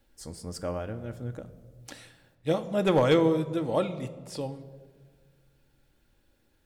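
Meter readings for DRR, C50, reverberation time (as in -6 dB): 7.5 dB, 14.5 dB, 1.6 s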